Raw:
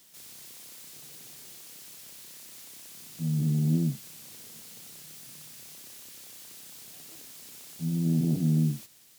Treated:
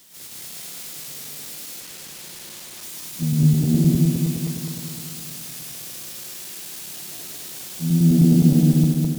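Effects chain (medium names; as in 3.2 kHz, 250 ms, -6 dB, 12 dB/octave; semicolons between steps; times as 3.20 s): backward echo that repeats 104 ms, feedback 78%, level 0 dB; 1.80–2.83 s: hysteresis with a dead band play -41 dBFS; trim +6.5 dB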